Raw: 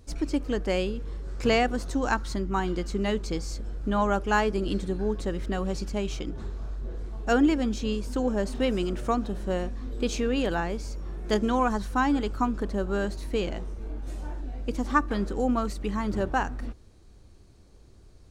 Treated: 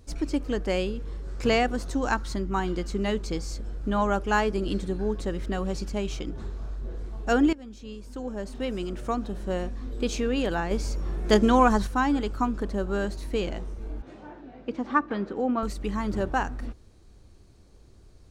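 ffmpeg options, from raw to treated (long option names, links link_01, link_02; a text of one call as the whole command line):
ffmpeg -i in.wav -filter_complex "[0:a]asettb=1/sr,asplit=3[link_01][link_02][link_03];[link_01]atrim=end=14.024[link_04];[link_02]atrim=start=14.02:end=15.63,asetpts=PTS-STARTPTS,afade=type=in:duration=0.004:curve=qsin,afade=type=out:start_time=1.606:duration=0.004:curve=qsin,highpass=170,lowpass=3000[link_05];[link_03]atrim=start=15.626[link_06];[link_04][link_05]acrossfade=duration=0.004:curve1=hsin:curve2=qsin[link_07];[link_07][link_06]acrossfade=duration=0.004:curve1=qsin:curve2=hsin,asplit=4[link_08][link_09][link_10][link_11];[link_08]atrim=end=7.53,asetpts=PTS-STARTPTS,afade=type=out:start_time=7.526:duration=0.004:curve=hsin:silence=0.11885[link_12];[link_09]atrim=start=7.53:end=10.712,asetpts=PTS-STARTPTS,afade=type=in:duration=2.2:silence=0.11885[link_13];[link_10]atrim=start=10.708:end=11.872,asetpts=PTS-STARTPTS,volume=5.5dB[link_14];[link_11]atrim=start=11.868[link_15];[link_12][link_13]concat=n=2:v=0:a=1[link_16];[link_16][link_14]acrossfade=duration=0.004:curve1=hsin:curve2=hsin[link_17];[link_17][link_15]acrossfade=duration=0.004:curve1=hsin:curve2=hsin" out.wav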